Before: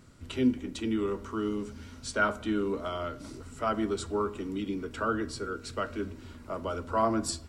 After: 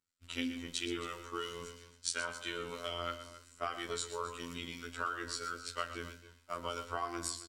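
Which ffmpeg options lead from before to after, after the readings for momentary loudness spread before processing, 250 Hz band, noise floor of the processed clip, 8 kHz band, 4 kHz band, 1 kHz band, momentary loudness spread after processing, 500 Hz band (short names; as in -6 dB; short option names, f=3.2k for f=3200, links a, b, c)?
11 LU, -14.0 dB, -64 dBFS, 0.0 dB, +2.0 dB, -7.0 dB, 8 LU, -11.0 dB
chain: -filter_complex "[0:a]agate=range=-33dB:threshold=-35dB:ratio=3:detection=peak,tiltshelf=f=1.1k:g=-9,acompressor=threshold=-32dB:ratio=6,afftfilt=real='hypot(re,im)*cos(PI*b)':imag='0':win_size=2048:overlap=0.75,flanger=delay=9.3:depth=3.3:regen=62:speed=0.74:shape=sinusoidal,acrossover=split=1600[a][b];[a]aeval=exprs='val(0)*(1-0.5/2+0.5/2*cos(2*PI*3*n/s))':c=same[c];[b]aeval=exprs='val(0)*(1-0.5/2-0.5/2*cos(2*PI*3*n/s))':c=same[d];[c][d]amix=inputs=2:normalize=0,aecho=1:1:120|269:0.251|0.158,volume=8.5dB"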